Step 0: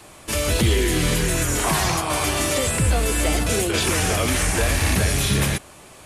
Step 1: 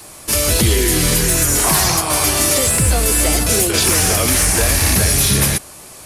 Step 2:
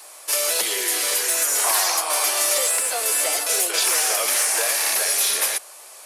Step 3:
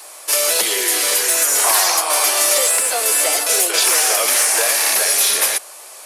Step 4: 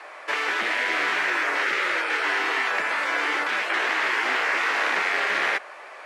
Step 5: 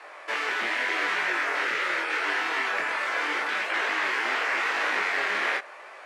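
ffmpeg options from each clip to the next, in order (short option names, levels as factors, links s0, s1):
-af "aexciter=amount=1.8:drive=7.5:freq=4400,volume=1.5"
-af "highpass=f=510:w=0.5412,highpass=f=510:w=1.3066,volume=0.596"
-af "lowshelf=f=260:g=4,volume=1.78"
-af "afftfilt=real='re*lt(hypot(re,im),0.2)':imag='im*lt(hypot(re,im),0.2)':win_size=1024:overlap=0.75,lowpass=f=1900:t=q:w=2.2"
-af "flanger=delay=19:depth=6.7:speed=0.81"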